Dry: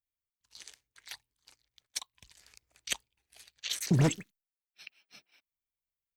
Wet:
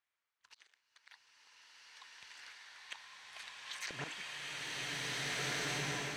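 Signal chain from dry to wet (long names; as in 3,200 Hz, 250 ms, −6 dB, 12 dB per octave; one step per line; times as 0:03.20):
resonant band-pass 1,500 Hz, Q 1.1
volume swells 695 ms
slow-attack reverb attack 1,930 ms, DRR −11.5 dB
level +14 dB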